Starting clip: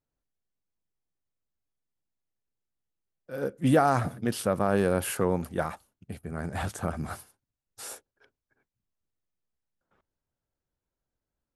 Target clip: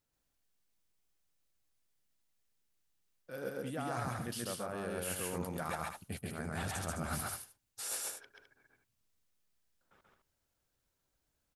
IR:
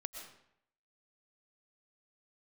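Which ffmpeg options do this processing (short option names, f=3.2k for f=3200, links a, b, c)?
-af "tiltshelf=f=1.4k:g=-4,areverse,acompressor=threshold=-40dB:ratio=20,areverse,aecho=1:1:134.1|209.9:0.891|0.398,volume=3.5dB"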